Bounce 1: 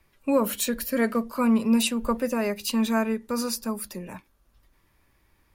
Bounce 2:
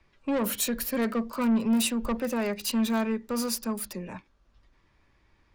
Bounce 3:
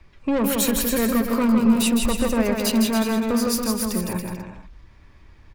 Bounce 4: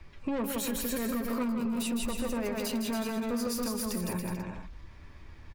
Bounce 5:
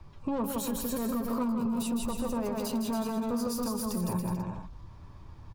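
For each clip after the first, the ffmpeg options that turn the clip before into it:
ffmpeg -i in.wav -filter_complex "[0:a]acrossover=split=190|6900[link_01][link_02][link_03];[link_02]asoftclip=type=tanh:threshold=-24.5dB[link_04];[link_03]acrusher=bits=6:mix=0:aa=0.000001[link_05];[link_01][link_04][link_05]amix=inputs=3:normalize=0" out.wav
ffmpeg -i in.wav -filter_complex "[0:a]lowshelf=frequency=140:gain=9.5,asplit=2[link_01][link_02];[link_02]acompressor=threshold=-31dB:ratio=6,volume=3dB[link_03];[link_01][link_03]amix=inputs=2:normalize=0,aecho=1:1:160|280|370|437.5|488.1:0.631|0.398|0.251|0.158|0.1" out.wav
ffmpeg -i in.wav -filter_complex "[0:a]alimiter=limit=-17dB:level=0:latency=1:release=49,acompressor=threshold=-33dB:ratio=2.5,asplit=2[link_01][link_02];[link_02]adelay=12,volume=-12dB[link_03];[link_01][link_03]amix=inputs=2:normalize=0" out.wav
ffmpeg -i in.wav -af "equalizer=frequency=125:width_type=o:width=1:gain=10,equalizer=frequency=1000:width_type=o:width=1:gain=8,equalizer=frequency=2000:width_type=o:width=1:gain=-11,volume=-1.5dB" out.wav

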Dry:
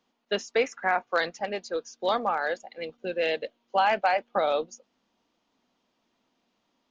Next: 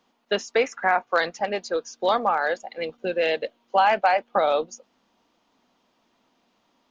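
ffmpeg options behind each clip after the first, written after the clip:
ffmpeg -i in.wav -filter_complex "[0:a]equalizer=frequency=960:width_type=o:width=1.5:gain=3,asplit=2[link_01][link_02];[link_02]acompressor=threshold=-30dB:ratio=6,volume=-1dB[link_03];[link_01][link_03]amix=inputs=2:normalize=0" out.wav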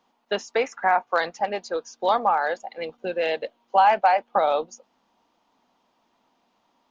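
ffmpeg -i in.wav -af "equalizer=frequency=870:width=1.9:gain=6.5,volume=-3dB" out.wav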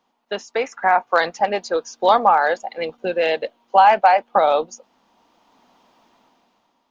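ffmpeg -i in.wav -af "dynaudnorm=framelen=240:gausssize=7:maxgain=12.5dB,volume=-1dB" out.wav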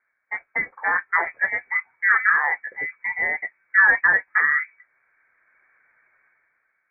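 ffmpeg -i in.wav -af "flanger=delay=6.5:depth=6.7:regen=-42:speed=0.31:shape=triangular,lowpass=frequency=2100:width_type=q:width=0.5098,lowpass=frequency=2100:width_type=q:width=0.6013,lowpass=frequency=2100:width_type=q:width=0.9,lowpass=frequency=2100:width_type=q:width=2.563,afreqshift=-2500" out.wav

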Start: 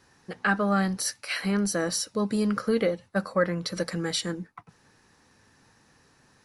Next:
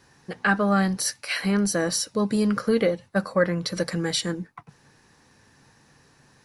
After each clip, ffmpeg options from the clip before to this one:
ffmpeg -i in.wav -af "equalizer=frequency=140:width_type=o:width=0.2:gain=6.5,bandreject=frequency=1300:width=19,volume=3dB" out.wav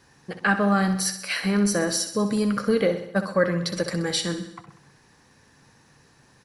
ffmpeg -i in.wav -af "aecho=1:1:64|128|192|256|320|384|448:0.299|0.173|0.1|0.0582|0.0338|0.0196|0.0114" out.wav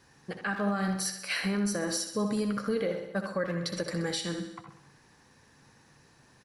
ffmpeg -i in.wav -filter_complex "[0:a]asplit=2[link_01][link_02];[link_02]adelay=80,highpass=300,lowpass=3400,asoftclip=type=hard:threshold=-16.5dB,volume=-8dB[link_03];[link_01][link_03]amix=inputs=2:normalize=0,alimiter=limit=-17.5dB:level=0:latency=1:release=335,volume=-3.5dB" out.wav

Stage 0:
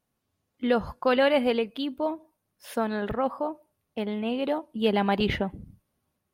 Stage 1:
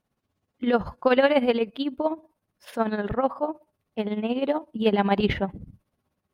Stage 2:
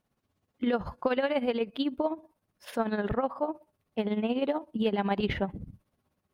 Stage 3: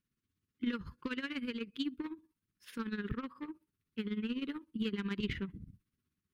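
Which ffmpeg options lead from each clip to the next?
ffmpeg -i in.wav -af "tremolo=f=16:d=0.68,aemphasis=mode=reproduction:type=cd,volume=5dB" out.wav
ffmpeg -i in.wav -af "acompressor=threshold=-24dB:ratio=6" out.wav
ffmpeg -i in.wav -af "aeval=exprs='0.211*(cos(1*acos(clip(val(0)/0.211,-1,1)))-cos(1*PI/2))+0.00944*(cos(7*acos(clip(val(0)/0.211,-1,1)))-cos(7*PI/2))':channel_layout=same,asuperstop=centerf=690:order=4:qfactor=0.68,volume=-4.5dB" out.wav

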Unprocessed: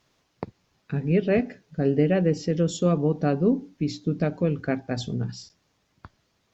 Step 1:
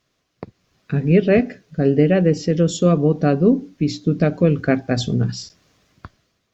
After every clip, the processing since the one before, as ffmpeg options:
ffmpeg -i in.wav -af "bandreject=frequency=880:width=5.1,dynaudnorm=framelen=200:gausssize=7:maxgain=15dB,volume=-2dB" out.wav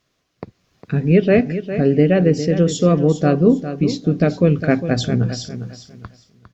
ffmpeg -i in.wav -af "aecho=1:1:405|810|1215:0.282|0.0705|0.0176,volume=1dB" out.wav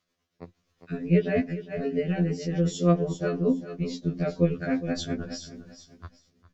ffmpeg -i in.wav -af "asubboost=boost=3:cutoff=85,tremolo=f=8.6:d=0.48,afftfilt=real='re*2*eq(mod(b,4),0)':imag='im*2*eq(mod(b,4),0)':win_size=2048:overlap=0.75,volume=-5.5dB" out.wav

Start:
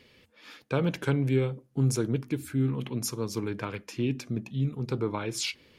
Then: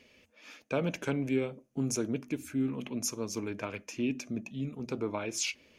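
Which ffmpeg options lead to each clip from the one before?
ffmpeg -i in.wav -af "equalizer=frequency=125:width_type=o:width=0.33:gain=-10,equalizer=frequency=250:width_type=o:width=0.33:gain=5,equalizer=frequency=630:width_type=o:width=0.33:gain=9,equalizer=frequency=2500:width_type=o:width=0.33:gain=7,equalizer=frequency=4000:width_type=o:width=0.33:gain=-3,equalizer=frequency=6300:width_type=o:width=0.33:gain=10,volume=-5dB" out.wav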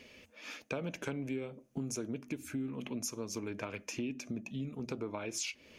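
ffmpeg -i in.wav -af "acompressor=threshold=-42dB:ratio=4,volume=5dB" out.wav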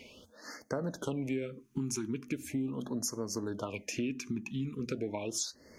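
ffmpeg -i in.wav -af "afftfilt=real='re*(1-between(b*sr/1024,560*pow(3100/560,0.5+0.5*sin(2*PI*0.39*pts/sr))/1.41,560*pow(3100/560,0.5+0.5*sin(2*PI*0.39*pts/sr))*1.41))':imag='im*(1-between(b*sr/1024,560*pow(3100/560,0.5+0.5*sin(2*PI*0.39*pts/sr))/1.41,560*pow(3100/560,0.5+0.5*sin(2*PI*0.39*pts/sr))*1.41))':win_size=1024:overlap=0.75,volume=3.5dB" out.wav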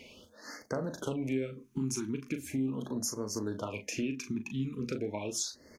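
ffmpeg -i in.wav -filter_complex "[0:a]asplit=2[link_01][link_02];[link_02]adelay=38,volume=-8dB[link_03];[link_01][link_03]amix=inputs=2:normalize=0" out.wav

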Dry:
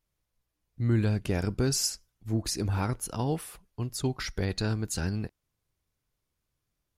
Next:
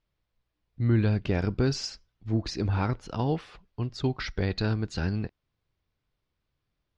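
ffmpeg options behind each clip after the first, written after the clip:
ffmpeg -i in.wav -af "lowpass=frequency=4600:width=0.5412,lowpass=frequency=4600:width=1.3066,volume=2dB" out.wav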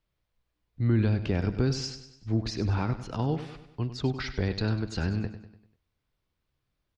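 ffmpeg -i in.wav -filter_complex "[0:a]acrossover=split=300[link_01][link_02];[link_02]acompressor=threshold=-32dB:ratio=2[link_03];[link_01][link_03]amix=inputs=2:normalize=0,asplit=2[link_04][link_05];[link_05]aecho=0:1:98|196|294|392|490:0.251|0.121|0.0579|0.0278|0.0133[link_06];[link_04][link_06]amix=inputs=2:normalize=0" out.wav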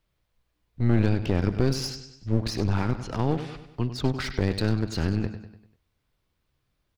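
ffmpeg -i in.wav -af "aeval=exprs='clip(val(0),-1,0.0133)':channel_layout=same,volume=5dB" out.wav

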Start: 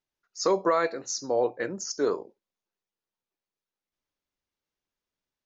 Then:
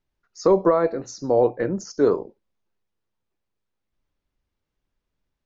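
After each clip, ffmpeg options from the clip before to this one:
ffmpeg -i in.wav -filter_complex "[0:a]aemphasis=mode=reproduction:type=bsi,acrossover=split=1100[link_01][link_02];[link_02]acompressor=threshold=-42dB:ratio=6[link_03];[link_01][link_03]amix=inputs=2:normalize=0,volume=5.5dB" out.wav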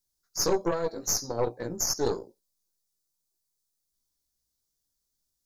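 ffmpeg -i in.wav -af "aexciter=amount=9.4:drive=7.9:freq=4100,flanger=delay=16:depth=2.3:speed=2.5,aeval=exprs='0.376*(cos(1*acos(clip(val(0)/0.376,-1,1)))-cos(1*PI/2))+0.0668*(cos(4*acos(clip(val(0)/0.376,-1,1)))-cos(4*PI/2))':channel_layout=same,volume=-7.5dB" out.wav

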